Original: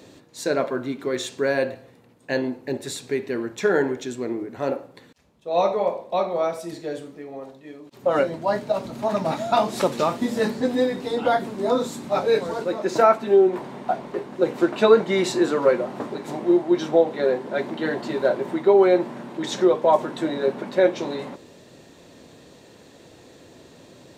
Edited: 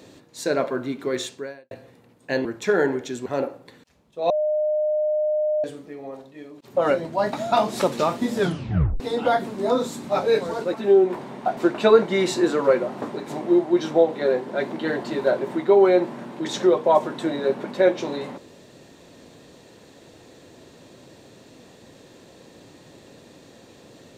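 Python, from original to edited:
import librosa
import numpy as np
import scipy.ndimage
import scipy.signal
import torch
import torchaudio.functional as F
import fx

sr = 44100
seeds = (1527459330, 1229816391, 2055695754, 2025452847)

y = fx.edit(x, sr, fx.fade_out_span(start_s=1.23, length_s=0.48, curve='qua'),
    fx.cut(start_s=2.45, length_s=0.96),
    fx.cut(start_s=4.22, length_s=0.33),
    fx.bleep(start_s=5.59, length_s=1.34, hz=609.0, db=-19.0),
    fx.cut(start_s=8.62, length_s=0.71),
    fx.tape_stop(start_s=10.36, length_s=0.64),
    fx.cut(start_s=12.74, length_s=0.43),
    fx.cut(start_s=14.0, length_s=0.55), tone=tone)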